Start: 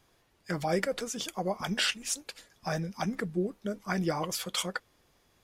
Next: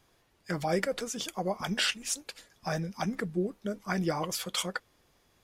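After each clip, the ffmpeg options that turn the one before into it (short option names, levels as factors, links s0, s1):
-af anull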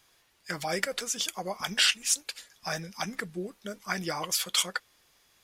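-af "tiltshelf=f=970:g=-7"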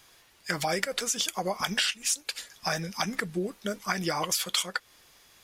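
-af "acompressor=threshold=0.0251:ratio=6,volume=2.24"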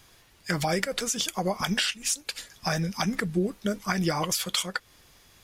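-af "lowshelf=f=250:g=11"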